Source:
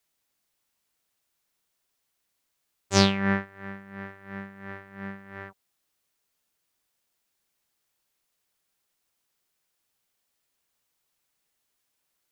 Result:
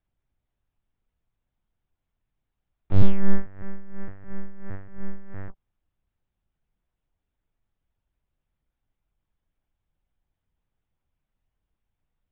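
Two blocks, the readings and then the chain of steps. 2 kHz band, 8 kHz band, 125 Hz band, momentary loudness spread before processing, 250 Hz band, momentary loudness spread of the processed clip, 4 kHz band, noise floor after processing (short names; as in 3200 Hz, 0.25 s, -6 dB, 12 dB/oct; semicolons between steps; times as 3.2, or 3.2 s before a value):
-13.0 dB, under -35 dB, +3.5 dB, 20 LU, -2.5 dB, 18 LU, -22.5 dB, -84 dBFS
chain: LPC vocoder at 8 kHz pitch kept; soft clip -15.5 dBFS, distortion -10 dB; tilt -4 dB/oct; gain -4 dB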